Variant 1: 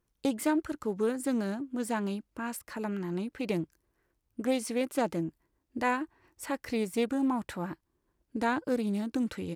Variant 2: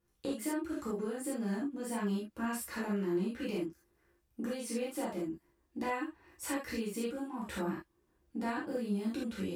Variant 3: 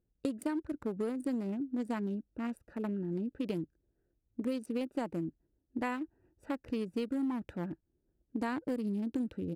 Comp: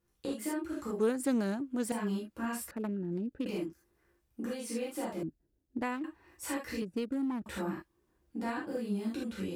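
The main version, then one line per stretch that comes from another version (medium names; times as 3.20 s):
2
1.00–1.92 s: from 1
2.71–3.46 s: from 3
5.23–6.04 s: from 3
6.82–7.46 s: from 3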